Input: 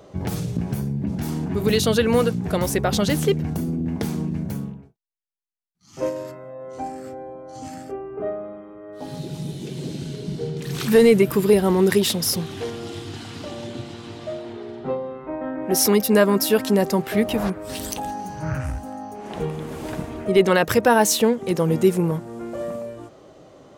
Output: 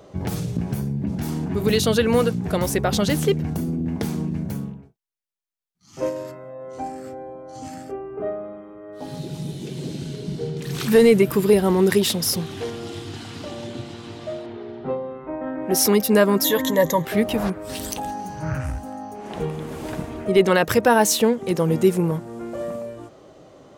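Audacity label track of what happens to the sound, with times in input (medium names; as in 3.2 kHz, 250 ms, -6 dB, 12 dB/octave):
14.460000	15.470000	distance through air 130 m
16.440000	17.050000	rippled EQ curve crests per octave 1.1, crest to trough 17 dB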